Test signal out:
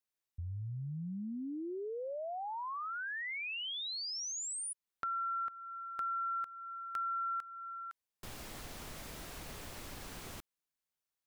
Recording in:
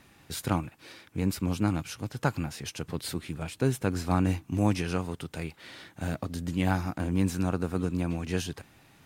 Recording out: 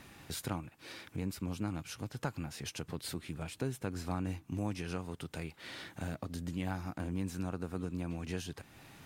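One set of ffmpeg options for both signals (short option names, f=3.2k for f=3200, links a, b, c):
-af "acompressor=threshold=-47dB:ratio=2,volume=3dB"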